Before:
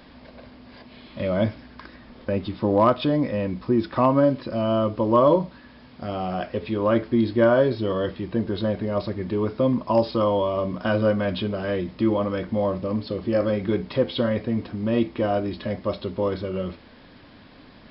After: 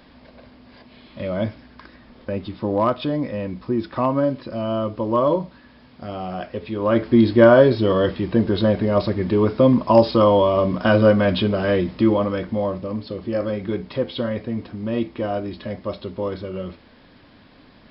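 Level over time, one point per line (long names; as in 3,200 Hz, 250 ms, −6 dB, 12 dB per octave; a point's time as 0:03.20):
0:06.73 −1.5 dB
0:07.16 +6.5 dB
0:11.78 +6.5 dB
0:12.91 −1.5 dB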